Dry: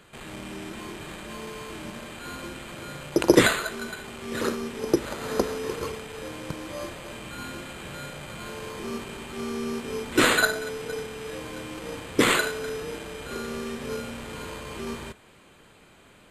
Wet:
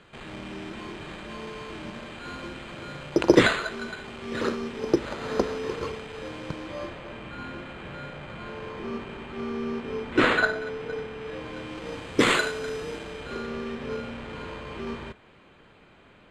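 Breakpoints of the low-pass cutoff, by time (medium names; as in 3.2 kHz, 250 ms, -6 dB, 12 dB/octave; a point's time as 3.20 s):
6.50 s 4.7 kHz
7.11 s 2.7 kHz
11.18 s 2.7 kHz
12.27 s 7 kHz
12.87 s 7 kHz
13.51 s 3.3 kHz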